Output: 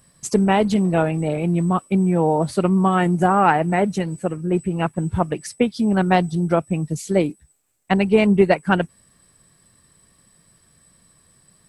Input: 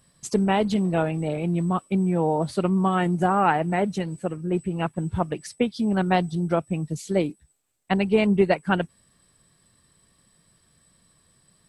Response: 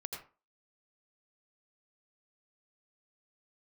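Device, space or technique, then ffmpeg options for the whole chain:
exciter from parts: -filter_complex "[0:a]asplit=2[link_01][link_02];[link_02]highpass=frequency=2700:poles=1,asoftclip=type=tanh:threshold=-20.5dB,highpass=frequency=2800:width=0.5412,highpass=frequency=2800:width=1.3066,volume=-7.5dB[link_03];[link_01][link_03]amix=inputs=2:normalize=0,volume=4.5dB"

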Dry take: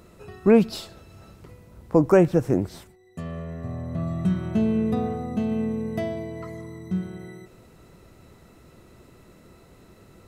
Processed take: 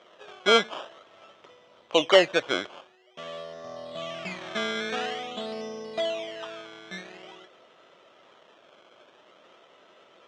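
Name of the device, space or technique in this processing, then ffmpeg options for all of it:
circuit-bent sampling toy: -af "acrusher=samples=16:mix=1:aa=0.000001:lfo=1:lforange=16:lforate=0.48,highpass=560,equalizer=frequency=600:width_type=q:width=4:gain=7,equalizer=frequency=1200:width_type=q:width=4:gain=4,equalizer=frequency=3200:width_type=q:width=4:gain=9,equalizer=frequency=4600:width_type=q:width=4:gain=-7,lowpass=frequency=5700:width=0.5412,lowpass=frequency=5700:width=1.3066"

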